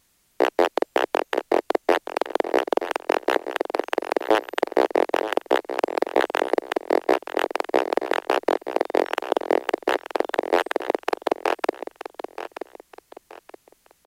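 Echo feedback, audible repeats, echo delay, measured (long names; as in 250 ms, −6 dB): 32%, 3, 926 ms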